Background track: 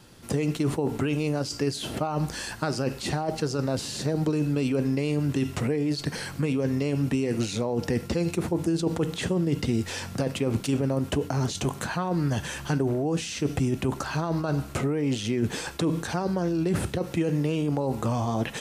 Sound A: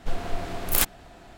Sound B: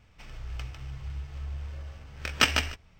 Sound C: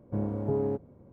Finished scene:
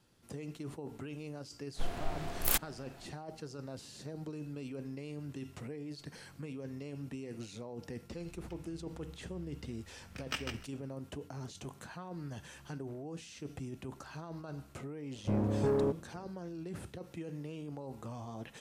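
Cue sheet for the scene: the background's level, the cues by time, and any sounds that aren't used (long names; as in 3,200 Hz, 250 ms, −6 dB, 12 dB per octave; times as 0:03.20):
background track −17.5 dB
0:01.73: mix in A −7.5 dB, fades 0.05 s
0:07.91: mix in B −16 dB
0:15.15: mix in C −6 dB + leveller curve on the samples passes 2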